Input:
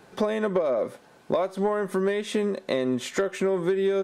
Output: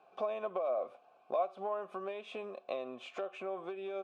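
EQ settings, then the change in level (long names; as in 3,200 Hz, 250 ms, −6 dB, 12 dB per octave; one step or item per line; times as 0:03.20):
dynamic equaliser 3,100 Hz, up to +4 dB, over −47 dBFS, Q 1.3
formant filter a
0.0 dB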